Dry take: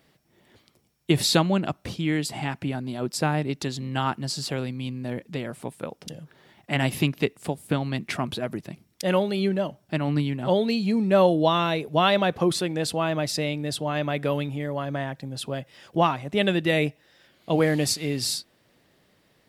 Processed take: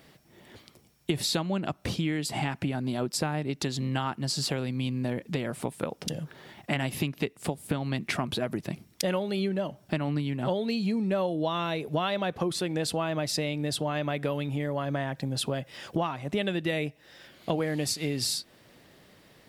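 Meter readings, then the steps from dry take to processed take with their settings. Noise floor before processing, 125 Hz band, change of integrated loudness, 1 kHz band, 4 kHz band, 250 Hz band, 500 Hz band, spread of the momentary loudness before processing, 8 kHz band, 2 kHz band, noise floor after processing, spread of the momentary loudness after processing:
-64 dBFS, -3.5 dB, -5.0 dB, -6.5 dB, -3.5 dB, -4.5 dB, -6.0 dB, 12 LU, -2.5 dB, -5.0 dB, -60 dBFS, 6 LU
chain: compression 6:1, threshold -33 dBFS, peak gain reduction 17.5 dB; trim +6.5 dB

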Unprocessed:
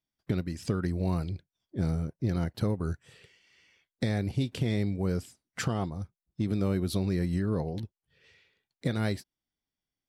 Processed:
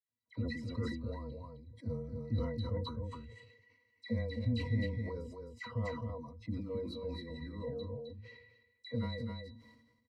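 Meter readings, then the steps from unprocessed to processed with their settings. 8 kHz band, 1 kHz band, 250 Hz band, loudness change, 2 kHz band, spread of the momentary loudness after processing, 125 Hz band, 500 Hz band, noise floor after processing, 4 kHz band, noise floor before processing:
under -20 dB, -7.5 dB, -9.5 dB, -8.5 dB, -6.0 dB, 16 LU, -8.0 dB, -6.0 dB, -76 dBFS, -6.0 dB, under -85 dBFS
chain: high-pass 150 Hz 6 dB/octave; spectral noise reduction 9 dB; treble shelf 3.7 kHz +5.5 dB; in parallel at +1 dB: peak limiter -24 dBFS, peak gain reduction 8 dB; on the sum: compression 2.5:1, threshold -40 dBFS, peak gain reduction 12.5 dB; pitch-class resonator B, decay 0.12 s; phase dispersion lows, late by 84 ms, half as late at 1.6 kHz; frequency shift -17 Hz; on a send: delay 261 ms -5 dB; on the sum: decay stretcher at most 51 dB/s; trim +8 dB

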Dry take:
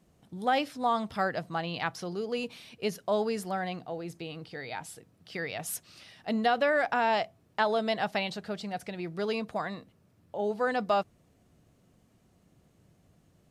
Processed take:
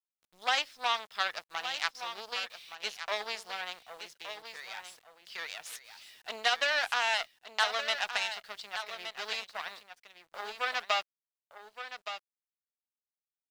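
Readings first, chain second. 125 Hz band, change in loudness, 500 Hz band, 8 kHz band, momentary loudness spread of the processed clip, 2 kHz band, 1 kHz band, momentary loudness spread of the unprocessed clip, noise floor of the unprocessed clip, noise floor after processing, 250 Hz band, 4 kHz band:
under -25 dB, -2.0 dB, -11.0 dB, +0.5 dB, 16 LU, +2.0 dB, -4.5 dB, 14 LU, -66 dBFS, under -85 dBFS, -26.0 dB, +6.5 dB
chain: Chebyshev shaper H 7 -20 dB, 8 -23 dB, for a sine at -12 dBFS; tilt shelf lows -8.5 dB, about 1.4 kHz; in parallel at -2.5 dB: compression 8:1, threshold -43 dBFS, peak gain reduction 20.5 dB; on the sum: three-band isolator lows -20 dB, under 470 Hz, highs -17 dB, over 6.3 kHz; bit crusher 10-bit; on a send: delay 1169 ms -10 dB

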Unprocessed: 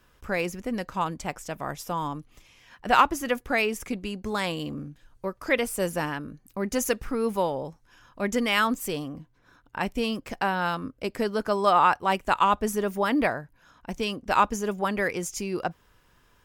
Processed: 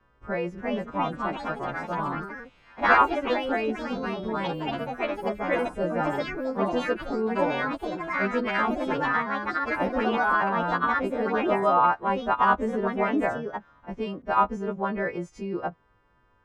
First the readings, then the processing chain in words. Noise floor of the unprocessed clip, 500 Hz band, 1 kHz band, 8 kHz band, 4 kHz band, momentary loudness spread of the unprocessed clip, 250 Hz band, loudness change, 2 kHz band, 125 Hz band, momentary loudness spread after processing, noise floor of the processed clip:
-63 dBFS, +1.5 dB, +1.0 dB, under -15 dB, -5.5 dB, 14 LU, +0.5 dB, +0.5 dB, +2.0 dB, -0.5 dB, 10 LU, -63 dBFS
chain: partials quantised in pitch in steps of 2 st; low-pass 1.2 kHz 12 dB/octave; ever faster or slower copies 390 ms, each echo +3 st, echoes 3

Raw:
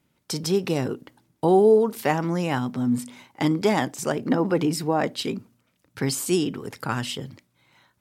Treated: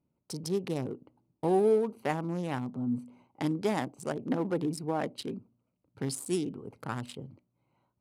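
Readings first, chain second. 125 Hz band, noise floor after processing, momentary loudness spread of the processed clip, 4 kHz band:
-8.0 dB, -80 dBFS, 14 LU, -12.5 dB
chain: local Wiener filter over 25 samples; peaking EQ 10 kHz +9 dB 0.36 oct; trim -8 dB

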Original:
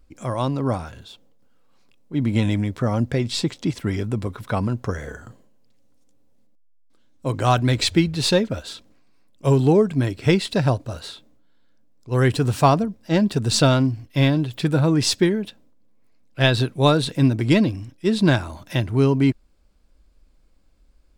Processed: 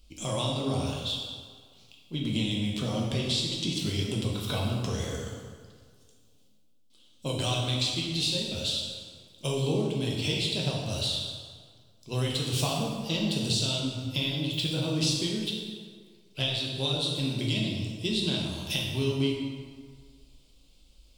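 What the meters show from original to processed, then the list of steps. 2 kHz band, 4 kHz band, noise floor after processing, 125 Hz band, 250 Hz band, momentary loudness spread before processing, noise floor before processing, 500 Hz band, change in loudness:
-9.0 dB, 0.0 dB, -59 dBFS, -9.5 dB, -10.5 dB, 11 LU, -56 dBFS, -11.0 dB, -8.5 dB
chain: resonant high shelf 2.3 kHz +10.5 dB, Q 3; compression 10:1, threshold -24 dBFS, peak gain reduction 22 dB; plate-style reverb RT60 1.8 s, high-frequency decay 0.65×, DRR -3 dB; trim -5.5 dB

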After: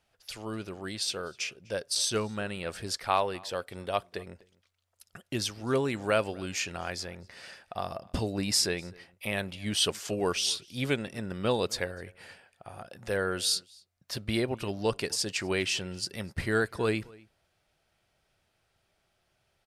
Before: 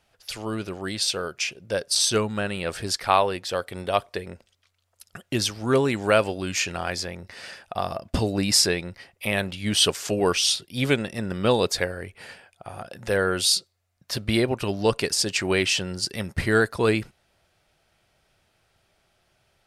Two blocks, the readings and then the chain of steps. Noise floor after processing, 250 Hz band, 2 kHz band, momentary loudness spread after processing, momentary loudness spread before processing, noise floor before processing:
-75 dBFS, -7.0 dB, -7.0 dB, 15 LU, 15 LU, -69 dBFS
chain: echo from a far wall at 43 m, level -24 dB; trim -7 dB

